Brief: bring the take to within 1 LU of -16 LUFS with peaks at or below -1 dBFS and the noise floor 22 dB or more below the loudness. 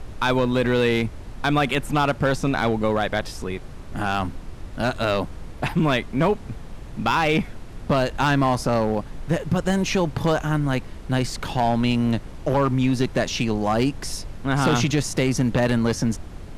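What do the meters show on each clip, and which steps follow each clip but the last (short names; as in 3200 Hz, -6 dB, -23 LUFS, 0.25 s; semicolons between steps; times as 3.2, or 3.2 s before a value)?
clipped 1.1%; flat tops at -13.0 dBFS; noise floor -38 dBFS; noise floor target -45 dBFS; loudness -23.0 LUFS; peak -13.0 dBFS; loudness target -16.0 LUFS
-> clip repair -13 dBFS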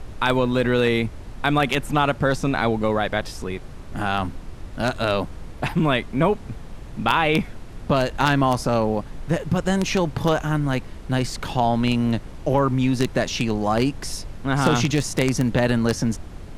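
clipped 0.0%; noise floor -38 dBFS; noise floor target -45 dBFS
-> noise print and reduce 7 dB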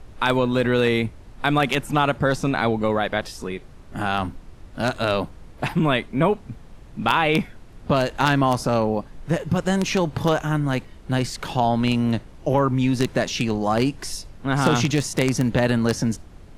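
noise floor -44 dBFS; noise floor target -45 dBFS
-> noise print and reduce 6 dB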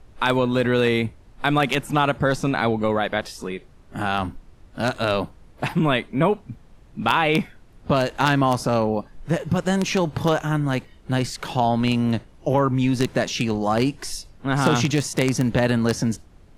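noise floor -50 dBFS; loudness -22.5 LUFS; peak -4.0 dBFS; loudness target -16.0 LUFS
-> gain +6.5 dB; limiter -1 dBFS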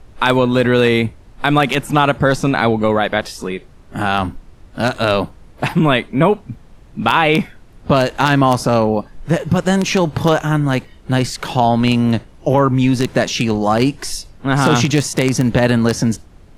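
loudness -16.0 LUFS; peak -1.0 dBFS; noise floor -44 dBFS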